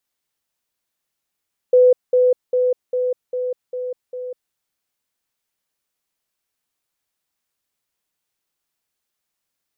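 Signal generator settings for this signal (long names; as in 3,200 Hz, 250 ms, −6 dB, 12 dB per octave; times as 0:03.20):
level staircase 501 Hz −8 dBFS, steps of −3 dB, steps 7, 0.20 s 0.20 s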